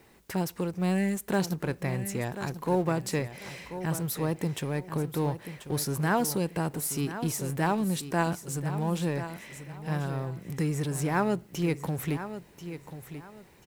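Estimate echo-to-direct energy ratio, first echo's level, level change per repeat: -11.0 dB, -11.5 dB, -11.5 dB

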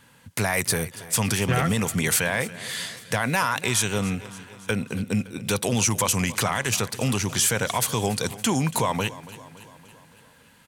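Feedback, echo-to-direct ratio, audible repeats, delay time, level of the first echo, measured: 59%, -15.5 dB, 4, 0.282 s, -17.5 dB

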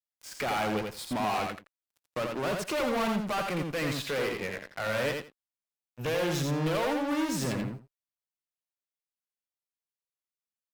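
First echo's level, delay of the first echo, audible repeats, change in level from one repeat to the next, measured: -4.0 dB, 84 ms, 2, -15.5 dB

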